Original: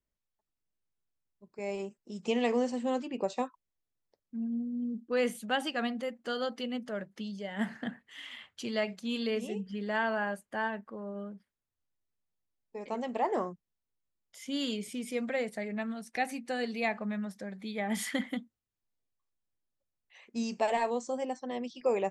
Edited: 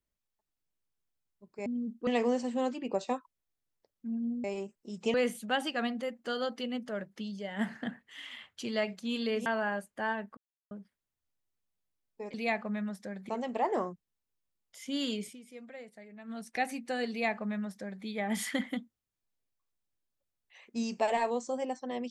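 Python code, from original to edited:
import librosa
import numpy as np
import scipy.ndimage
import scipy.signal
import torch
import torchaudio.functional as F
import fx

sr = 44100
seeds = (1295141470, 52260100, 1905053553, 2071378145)

y = fx.edit(x, sr, fx.swap(start_s=1.66, length_s=0.7, other_s=4.73, other_length_s=0.41),
    fx.cut(start_s=9.46, length_s=0.55),
    fx.silence(start_s=10.92, length_s=0.34),
    fx.fade_down_up(start_s=14.86, length_s=1.09, db=-14.5, fade_s=0.14, curve='qua'),
    fx.duplicate(start_s=16.7, length_s=0.95, to_s=12.89), tone=tone)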